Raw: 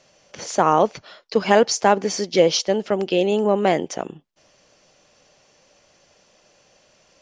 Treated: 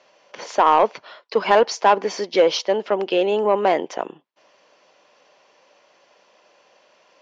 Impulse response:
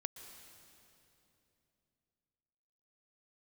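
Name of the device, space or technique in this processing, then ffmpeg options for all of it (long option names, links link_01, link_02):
intercom: -af "highpass=360,lowpass=3600,equalizer=frequency=990:width_type=o:width=0.24:gain=7,asoftclip=type=tanh:threshold=-8dB,volume=2.5dB"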